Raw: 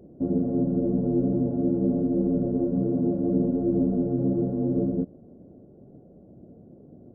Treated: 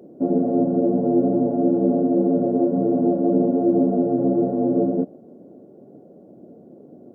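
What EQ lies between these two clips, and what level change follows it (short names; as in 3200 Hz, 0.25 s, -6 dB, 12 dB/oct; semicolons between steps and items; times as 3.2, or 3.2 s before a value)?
dynamic EQ 710 Hz, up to +7 dB, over -49 dBFS, Q 2.9; HPF 260 Hz 12 dB/oct; +7.5 dB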